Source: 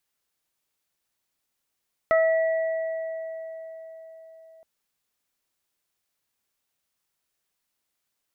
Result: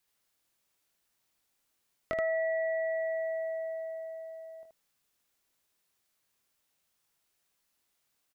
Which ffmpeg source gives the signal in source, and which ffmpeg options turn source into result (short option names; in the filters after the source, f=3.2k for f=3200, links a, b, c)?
-f lavfi -i "aevalsrc='0.15*pow(10,-3*t/4.63)*sin(2*PI*649*t)+0.0708*pow(10,-3*t/0.38)*sin(2*PI*1298*t)+0.0531*pow(10,-3*t/3.05)*sin(2*PI*1947*t)':d=2.52:s=44100"
-filter_complex "[0:a]acrossover=split=740|1500[a][b][c];[a]acompressor=threshold=-38dB:ratio=4[d];[b]acompressor=threshold=-48dB:ratio=4[e];[c]acompressor=threshold=-47dB:ratio=4[f];[d][e][f]amix=inputs=3:normalize=0,aecho=1:1:22|77:0.501|0.631"